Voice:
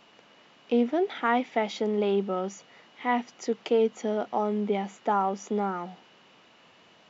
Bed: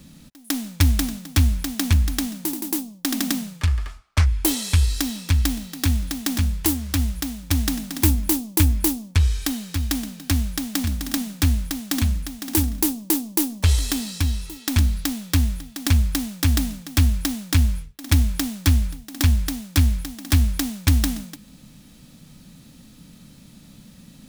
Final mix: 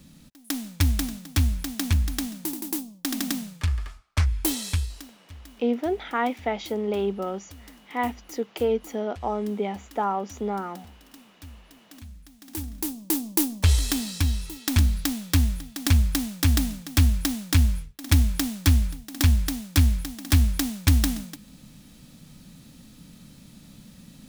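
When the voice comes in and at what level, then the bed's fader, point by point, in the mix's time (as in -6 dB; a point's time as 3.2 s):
4.90 s, -0.5 dB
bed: 4.69 s -4.5 dB
5.17 s -25.5 dB
11.89 s -25.5 dB
13.27 s -1.5 dB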